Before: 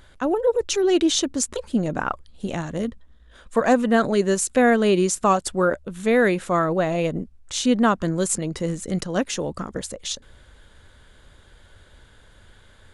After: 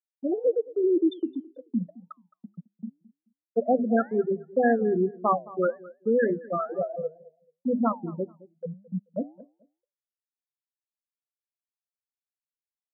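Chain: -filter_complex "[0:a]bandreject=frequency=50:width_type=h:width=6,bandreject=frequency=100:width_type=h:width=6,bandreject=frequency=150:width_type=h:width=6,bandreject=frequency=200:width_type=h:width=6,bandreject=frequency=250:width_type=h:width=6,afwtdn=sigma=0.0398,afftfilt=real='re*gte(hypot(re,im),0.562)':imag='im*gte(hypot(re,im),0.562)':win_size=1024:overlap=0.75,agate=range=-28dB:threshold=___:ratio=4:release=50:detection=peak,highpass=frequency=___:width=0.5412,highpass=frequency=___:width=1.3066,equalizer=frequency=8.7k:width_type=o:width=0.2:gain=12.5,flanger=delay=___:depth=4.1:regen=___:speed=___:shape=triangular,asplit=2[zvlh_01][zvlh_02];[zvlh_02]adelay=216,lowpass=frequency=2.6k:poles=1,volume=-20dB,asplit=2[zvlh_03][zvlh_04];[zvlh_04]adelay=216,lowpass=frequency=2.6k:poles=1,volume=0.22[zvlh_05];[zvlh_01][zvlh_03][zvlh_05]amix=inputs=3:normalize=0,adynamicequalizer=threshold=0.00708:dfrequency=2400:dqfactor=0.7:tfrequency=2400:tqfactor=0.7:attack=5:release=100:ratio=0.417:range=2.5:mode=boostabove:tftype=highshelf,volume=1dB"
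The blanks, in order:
-42dB, 160, 160, 5.8, -85, 1.9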